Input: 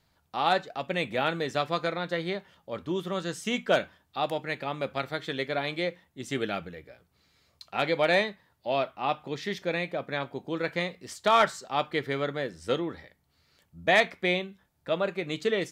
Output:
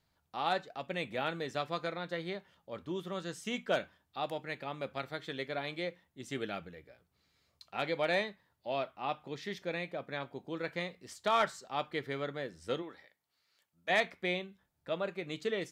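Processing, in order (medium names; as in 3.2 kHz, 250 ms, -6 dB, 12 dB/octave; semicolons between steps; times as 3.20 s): 12.81–13.89 s: high-pass 570 Hz -> 1.3 kHz 6 dB/octave; trim -7.5 dB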